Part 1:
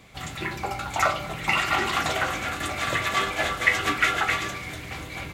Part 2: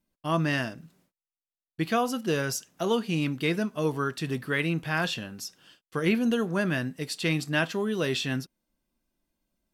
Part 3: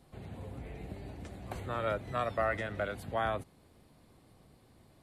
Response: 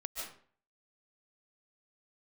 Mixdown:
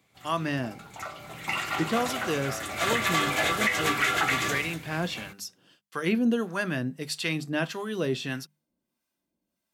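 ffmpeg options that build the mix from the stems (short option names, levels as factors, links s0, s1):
-filter_complex "[0:a]highshelf=f=8500:g=8,volume=0.944,afade=t=in:st=1.11:d=0.3:silence=0.354813,afade=t=in:st=2.68:d=0.46:silence=0.237137,afade=t=out:st=4.52:d=0.26:silence=0.237137[s0];[1:a]acrossover=split=700[s1][s2];[s1]aeval=exprs='val(0)*(1-0.7/2+0.7/2*cos(2*PI*1.6*n/s))':c=same[s3];[s2]aeval=exprs='val(0)*(1-0.7/2-0.7/2*cos(2*PI*1.6*n/s))':c=same[s4];[s3][s4]amix=inputs=2:normalize=0,bandreject=f=50:t=h:w=6,bandreject=f=100:t=h:w=6,bandreject=f=150:t=h:w=6,bandreject=f=200:t=h:w=6,volume=0.668[s5];[2:a]adelay=100,volume=0.188[s6];[s0][s5][s6]amix=inputs=3:normalize=0,highpass=98,acontrast=45,alimiter=limit=0.188:level=0:latency=1:release=351"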